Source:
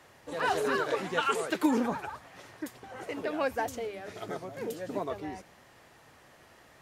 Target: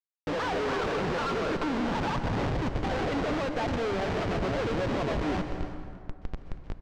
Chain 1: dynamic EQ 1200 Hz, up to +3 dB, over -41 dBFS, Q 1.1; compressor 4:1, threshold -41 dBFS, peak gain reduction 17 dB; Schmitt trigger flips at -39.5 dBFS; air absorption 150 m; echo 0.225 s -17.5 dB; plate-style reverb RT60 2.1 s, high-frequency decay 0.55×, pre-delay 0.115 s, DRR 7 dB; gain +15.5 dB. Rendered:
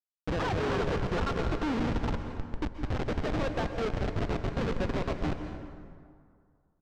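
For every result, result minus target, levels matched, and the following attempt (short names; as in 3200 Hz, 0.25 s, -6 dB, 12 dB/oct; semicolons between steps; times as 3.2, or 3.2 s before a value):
echo 98 ms early; Schmitt trigger: distortion +6 dB
dynamic EQ 1200 Hz, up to +3 dB, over -41 dBFS, Q 1.1; compressor 4:1, threshold -41 dBFS, peak gain reduction 17 dB; Schmitt trigger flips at -39.5 dBFS; air absorption 150 m; echo 0.323 s -17.5 dB; plate-style reverb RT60 2.1 s, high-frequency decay 0.55×, pre-delay 0.115 s, DRR 7 dB; gain +15.5 dB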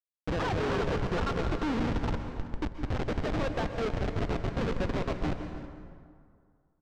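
Schmitt trigger: distortion +6 dB
dynamic EQ 1200 Hz, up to +3 dB, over -41 dBFS, Q 1.1; compressor 4:1, threshold -41 dBFS, peak gain reduction 17 dB; Schmitt trigger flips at -47 dBFS; air absorption 150 m; echo 0.323 s -17.5 dB; plate-style reverb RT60 2.1 s, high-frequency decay 0.55×, pre-delay 0.115 s, DRR 7 dB; gain +15.5 dB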